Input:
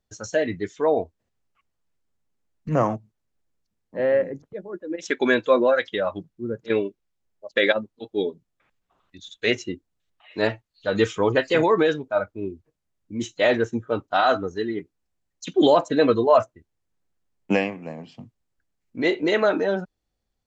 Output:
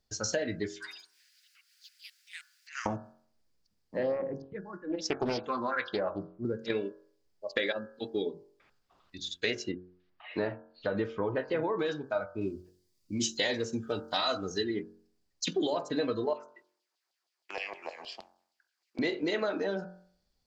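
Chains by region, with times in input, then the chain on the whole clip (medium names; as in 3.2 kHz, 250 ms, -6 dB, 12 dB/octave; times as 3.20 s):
0.74–2.86 s: Chebyshev high-pass 1.5 kHz, order 5 + upward compressor, threshold -54 dBFS + ever faster or slower copies 85 ms, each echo +5 st, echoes 3, each echo -6 dB
4.03–6.45 s: low-pass 5.2 kHz + phase shifter stages 4, 1.1 Hz, lowest notch 430–3800 Hz + loudspeaker Doppler distortion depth 0.45 ms
9.71–11.79 s: low-pass 1.7 kHz + tape noise reduction on one side only encoder only
12.41–14.64 s: treble shelf 3 kHz +10.5 dB + Shepard-style phaser rising 1.6 Hz
16.33–18.99 s: compression, threshold -32 dBFS + peaking EQ 360 Hz +14.5 dB 0.28 oct + LFO high-pass saw down 6.4 Hz 650–3900 Hz
whole clip: compression 6:1, threshold -29 dBFS; peaking EQ 4.8 kHz +11 dB 0.42 oct; de-hum 45.25 Hz, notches 38; trim +1 dB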